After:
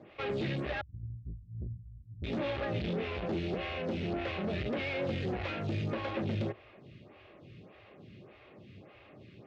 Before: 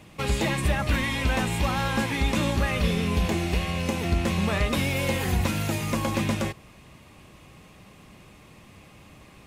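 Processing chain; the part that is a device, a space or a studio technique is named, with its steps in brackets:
0:00.81–0:02.24: inverse Chebyshev low-pass filter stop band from 550 Hz, stop band 80 dB
vibe pedal into a guitar amplifier (phaser with staggered stages 1.7 Hz; tube saturation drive 32 dB, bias 0.45; loudspeaker in its box 79–3,900 Hz, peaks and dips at 110 Hz +7 dB, 380 Hz +7 dB, 590 Hz +5 dB, 1,000 Hz −7 dB)

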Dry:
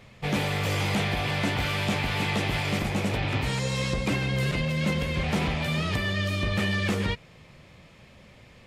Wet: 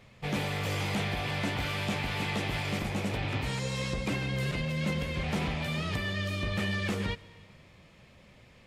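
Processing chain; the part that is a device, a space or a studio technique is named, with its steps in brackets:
compressed reverb return (on a send at −11 dB: convolution reverb RT60 0.95 s, pre-delay 107 ms + downward compressor, threshold −34 dBFS, peak gain reduction 13.5 dB)
on the sum: level −5 dB

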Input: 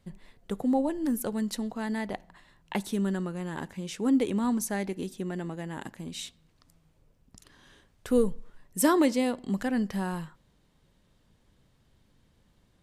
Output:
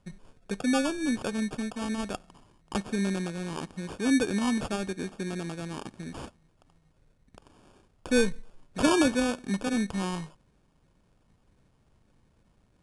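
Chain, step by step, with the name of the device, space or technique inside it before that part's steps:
crushed at another speed (tape speed factor 2×; decimation without filtering 11×; tape speed factor 0.5×)

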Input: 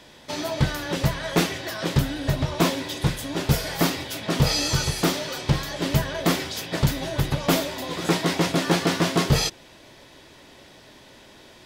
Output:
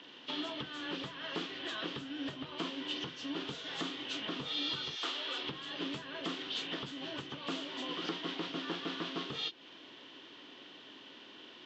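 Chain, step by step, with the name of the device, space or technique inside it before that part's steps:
0:04.95–0:05.43: high-pass filter 860 Hz → 260 Hz 12 dB per octave
hearing aid with frequency lowering (hearing-aid frequency compression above 2,000 Hz 1.5 to 1; downward compressor 4 to 1, threshold −32 dBFS, peak gain reduction 15 dB; loudspeaker in its box 270–5,600 Hz, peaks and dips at 280 Hz +6 dB, 600 Hz −8 dB, 840 Hz −4 dB, 1,200 Hz +3 dB, 2,100 Hz −3 dB, 3,200 Hz +9 dB)
level −4.5 dB

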